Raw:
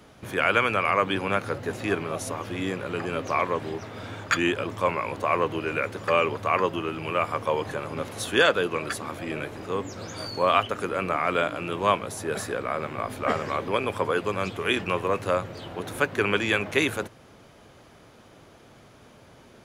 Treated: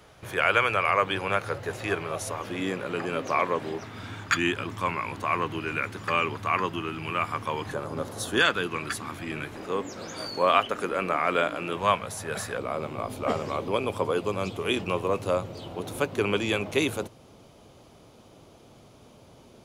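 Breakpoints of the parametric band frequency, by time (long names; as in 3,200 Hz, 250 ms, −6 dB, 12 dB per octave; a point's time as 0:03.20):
parametric band −10.5 dB 0.79 octaves
240 Hz
from 0:02.42 82 Hz
from 0:03.84 540 Hz
from 0:07.73 2,400 Hz
from 0:08.38 550 Hz
from 0:09.54 100 Hz
from 0:11.77 330 Hz
from 0:12.57 1,700 Hz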